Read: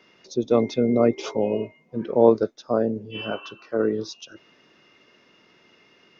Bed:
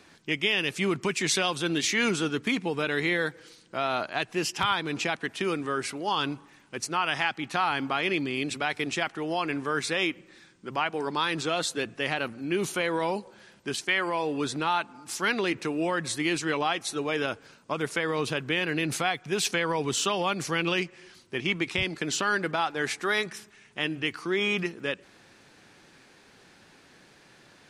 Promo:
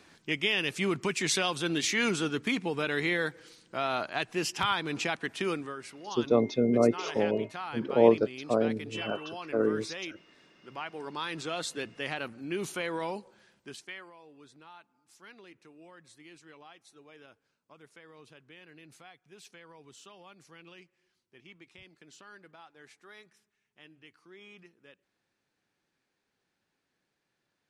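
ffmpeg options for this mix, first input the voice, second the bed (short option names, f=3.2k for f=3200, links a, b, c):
-filter_complex "[0:a]adelay=5800,volume=-4.5dB[a];[1:a]volume=4dB,afade=t=out:st=5.51:d=0.25:silence=0.316228,afade=t=in:st=10.63:d=1.05:silence=0.473151,afade=t=out:st=13.02:d=1.12:silence=0.105925[b];[a][b]amix=inputs=2:normalize=0"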